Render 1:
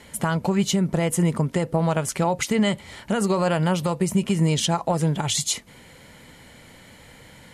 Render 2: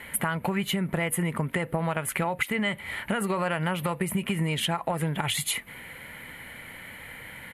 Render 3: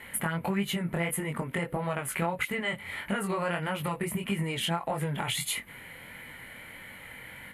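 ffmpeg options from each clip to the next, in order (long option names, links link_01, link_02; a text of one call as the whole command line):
ffmpeg -i in.wav -af "firequalizer=gain_entry='entry(410,0);entry(2000,12);entry(5600,-14);entry(11000,10)':delay=0.05:min_phase=1,acompressor=threshold=-23dB:ratio=6,volume=-1dB" out.wav
ffmpeg -i in.wav -af "flanger=delay=20:depth=4.3:speed=1.6" out.wav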